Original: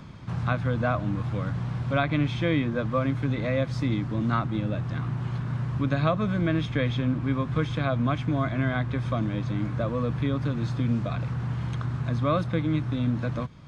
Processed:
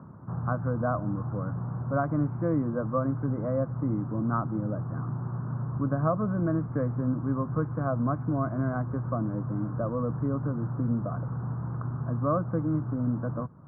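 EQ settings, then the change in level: high-pass 100 Hz; steep low-pass 1.4 kHz 48 dB/octave; -1.5 dB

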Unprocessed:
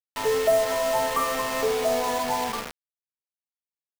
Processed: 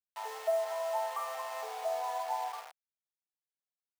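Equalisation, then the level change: ladder high-pass 680 Hz, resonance 65%; -5.0 dB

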